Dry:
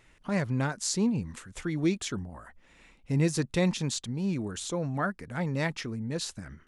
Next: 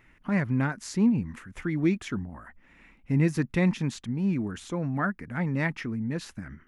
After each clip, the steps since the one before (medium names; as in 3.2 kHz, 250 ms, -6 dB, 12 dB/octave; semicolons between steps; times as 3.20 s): graphic EQ 250/500/2000/4000/8000 Hz +5/-5/+5/-8/-11 dB; trim +1 dB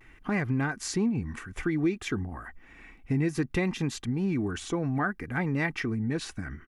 comb 2.6 ms, depth 41%; compression 3:1, threshold -29 dBFS, peak gain reduction 9 dB; vibrato 0.6 Hz 41 cents; trim +4 dB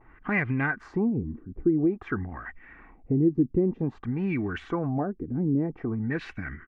LFO low-pass sine 0.51 Hz 300–2400 Hz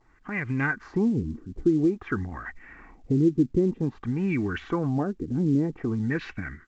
level rider gain up to 10.5 dB; dynamic bell 680 Hz, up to -6 dB, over -38 dBFS, Q 3; trim -8 dB; µ-law 128 kbps 16 kHz